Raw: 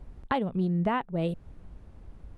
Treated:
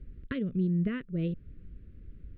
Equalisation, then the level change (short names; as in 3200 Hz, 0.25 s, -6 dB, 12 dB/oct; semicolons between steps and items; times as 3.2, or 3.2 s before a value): Butterworth band-stop 840 Hz, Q 0.66; air absorption 370 m; 0.0 dB